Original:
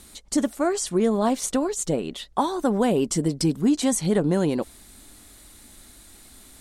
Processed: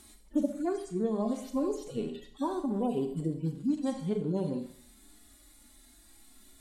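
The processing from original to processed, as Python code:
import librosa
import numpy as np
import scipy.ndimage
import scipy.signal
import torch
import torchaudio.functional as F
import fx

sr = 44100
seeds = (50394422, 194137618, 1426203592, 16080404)

y = fx.hpss_only(x, sr, part='harmonic')
y = fx.rev_schroeder(y, sr, rt60_s=0.58, comb_ms=29, drr_db=6.5)
y = fx.rider(y, sr, range_db=5, speed_s=0.5)
y = y * 10.0 ** (-7.5 / 20.0)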